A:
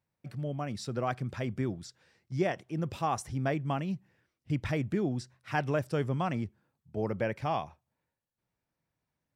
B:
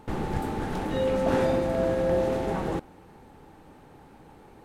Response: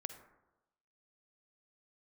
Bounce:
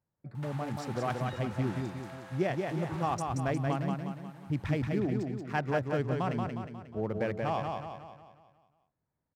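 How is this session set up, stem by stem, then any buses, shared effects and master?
-1.0 dB, 0.00 s, no send, echo send -4 dB, local Wiener filter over 15 samples
-1.0 dB, 0.35 s, no send, no echo send, compression 6:1, threshold -32 dBFS, peak gain reduction 12 dB; high-pass 880 Hz 24 dB/octave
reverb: none
echo: feedback delay 180 ms, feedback 48%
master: none

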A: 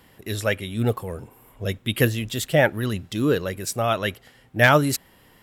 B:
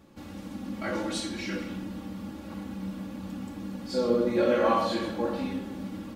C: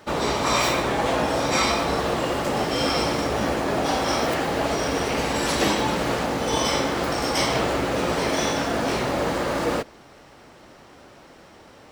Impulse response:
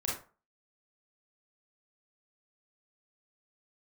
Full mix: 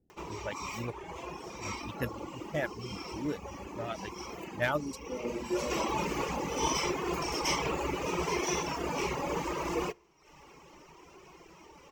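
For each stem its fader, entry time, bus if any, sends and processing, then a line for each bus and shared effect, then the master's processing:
-10.0 dB, 0.00 s, no send, local Wiener filter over 41 samples; level-controlled noise filter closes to 530 Hz, open at -16 dBFS
-5.5 dB, 1.15 s, no send, steep low-pass 1.4 kHz 96 dB/octave
-4.0 dB, 0.10 s, send -22 dB, rippled EQ curve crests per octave 0.76, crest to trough 11 dB; upward compressor, threshold -38 dBFS; auto duck -13 dB, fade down 0.25 s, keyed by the first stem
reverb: on, RT60 0.35 s, pre-delay 27 ms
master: reverb removal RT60 0.93 s; flange 0.71 Hz, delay 2.7 ms, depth 1 ms, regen +61%

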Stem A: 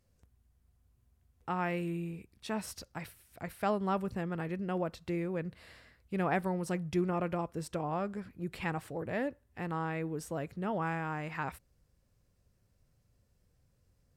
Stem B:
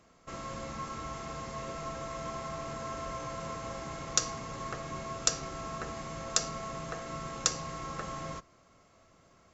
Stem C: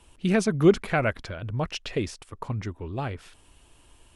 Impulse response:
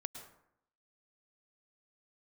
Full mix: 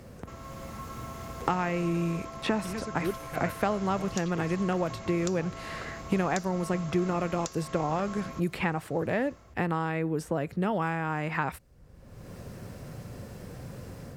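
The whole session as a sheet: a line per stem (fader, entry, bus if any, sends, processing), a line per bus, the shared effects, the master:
0.0 dB, 0.00 s, no send, three bands compressed up and down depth 100%
+0.5 dB, 0.00 s, no send, compression 5:1, threshold -44 dBFS, peak gain reduction 20.5 dB
-19.5 dB, 2.40 s, no send, none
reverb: none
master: level rider gain up to 5 dB; tape noise reduction on one side only decoder only

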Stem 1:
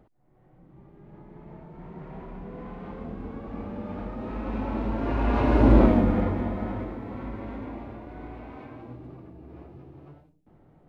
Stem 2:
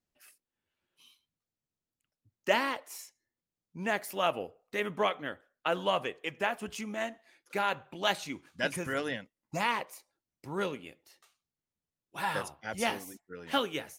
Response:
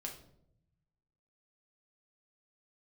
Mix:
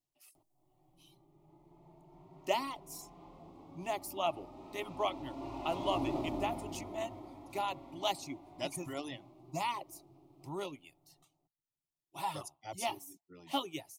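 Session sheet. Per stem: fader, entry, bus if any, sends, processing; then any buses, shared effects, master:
-5.0 dB, 0.35 s, send -12 dB, echo send -13 dB, tone controls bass -6 dB, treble +12 dB; saturation -16.5 dBFS, distortion -14 dB; auto duck -9 dB, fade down 1.45 s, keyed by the second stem
-1.5 dB, 0.00 s, no send, no echo send, reverb removal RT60 0.75 s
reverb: on, RT60 0.75 s, pre-delay 6 ms
echo: delay 234 ms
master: static phaser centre 320 Hz, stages 8

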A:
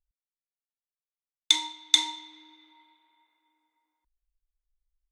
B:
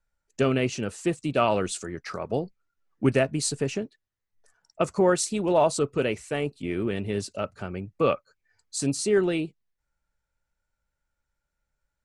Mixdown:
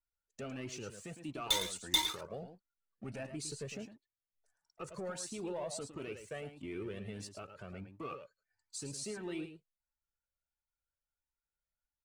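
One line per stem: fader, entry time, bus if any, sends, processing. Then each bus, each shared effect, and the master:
-5.5 dB, 0.00 s, no send, echo send -9.5 dB, fuzz box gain 24 dB, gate -32 dBFS
-10.0 dB, 0.00 s, no send, echo send -9.5 dB, waveshaping leveller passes 1; peak limiter -18.5 dBFS, peak gain reduction 9.5 dB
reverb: none
echo: delay 108 ms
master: bass shelf 82 Hz -6 dB; Shepard-style flanger rising 1.5 Hz

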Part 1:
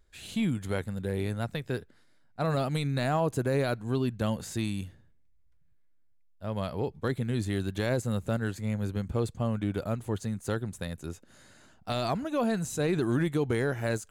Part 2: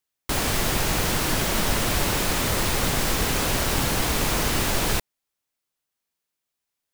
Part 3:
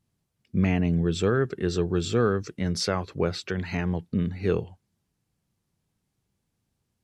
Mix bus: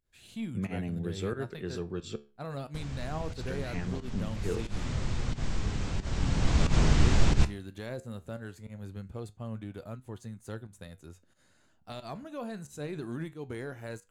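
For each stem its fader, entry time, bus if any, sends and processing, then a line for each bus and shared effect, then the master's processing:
-6.0 dB, 0.00 s, no send, none
4.30 s -19.5 dB -> 4.87 s -12 dB -> 6.07 s -12 dB -> 6.66 s -3 dB, 2.45 s, no send, steep low-pass 7.9 kHz 48 dB/octave; tone controls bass +14 dB, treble -2 dB
-5.5 dB, 0.00 s, muted 2.16–3.30 s, no send, high-pass 83 Hz 24 dB/octave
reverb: none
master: volume shaper 90 bpm, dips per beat 1, -22 dB, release 103 ms; flange 0.2 Hz, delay 7.7 ms, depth 6.9 ms, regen +75%

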